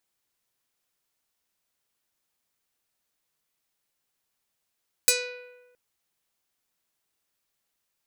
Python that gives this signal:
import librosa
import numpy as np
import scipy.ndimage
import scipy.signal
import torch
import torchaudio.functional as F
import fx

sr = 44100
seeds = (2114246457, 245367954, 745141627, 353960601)

y = fx.pluck(sr, length_s=0.67, note=71, decay_s=1.22, pick=0.48, brightness='medium')